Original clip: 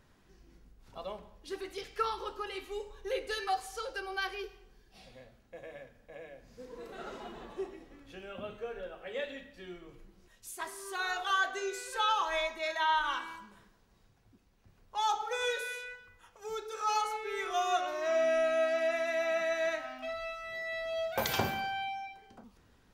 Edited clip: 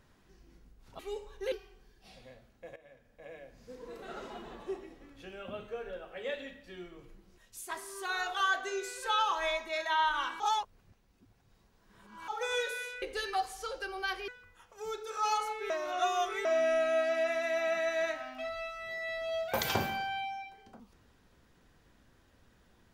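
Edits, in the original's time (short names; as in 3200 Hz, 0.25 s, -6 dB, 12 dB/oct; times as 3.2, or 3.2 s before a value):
0.99–2.63 cut
3.16–4.42 move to 15.92
5.66–6.25 fade in, from -15.5 dB
13.3–15.18 reverse
17.34–18.09 reverse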